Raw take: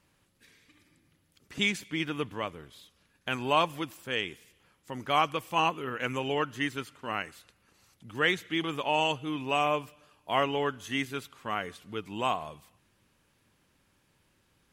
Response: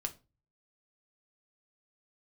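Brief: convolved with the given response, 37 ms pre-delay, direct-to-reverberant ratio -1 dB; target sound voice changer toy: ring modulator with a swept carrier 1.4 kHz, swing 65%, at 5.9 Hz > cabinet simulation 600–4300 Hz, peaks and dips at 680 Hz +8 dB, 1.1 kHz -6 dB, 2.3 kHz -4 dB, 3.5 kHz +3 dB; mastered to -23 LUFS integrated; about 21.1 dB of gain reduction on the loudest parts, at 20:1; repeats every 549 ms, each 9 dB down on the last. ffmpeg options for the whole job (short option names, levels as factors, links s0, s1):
-filter_complex "[0:a]acompressor=threshold=0.00891:ratio=20,aecho=1:1:549|1098|1647|2196:0.355|0.124|0.0435|0.0152,asplit=2[s0][s1];[1:a]atrim=start_sample=2205,adelay=37[s2];[s1][s2]afir=irnorm=-1:irlink=0,volume=1.12[s3];[s0][s3]amix=inputs=2:normalize=0,aeval=exprs='val(0)*sin(2*PI*1400*n/s+1400*0.65/5.9*sin(2*PI*5.9*n/s))':c=same,highpass=600,equalizer=f=680:t=q:w=4:g=8,equalizer=f=1100:t=q:w=4:g=-6,equalizer=f=2300:t=q:w=4:g=-4,equalizer=f=3500:t=q:w=4:g=3,lowpass=f=4300:w=0.5412,lowpass=f=4300:w=1.3066,volume=15"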